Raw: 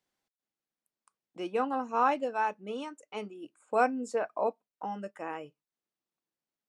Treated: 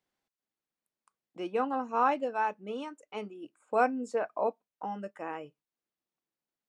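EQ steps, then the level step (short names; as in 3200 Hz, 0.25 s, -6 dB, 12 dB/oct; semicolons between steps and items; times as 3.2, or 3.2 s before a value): high shelf 5200 Hz -7 dB; 0.0 dB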